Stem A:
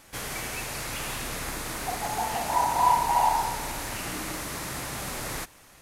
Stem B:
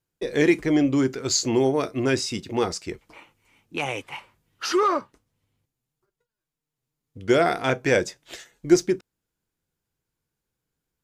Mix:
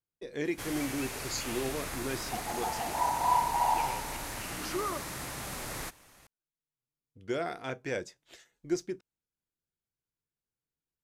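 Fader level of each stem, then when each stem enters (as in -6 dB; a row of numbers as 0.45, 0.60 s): -5.0, -14.0 dB; 0.45, 0.00 s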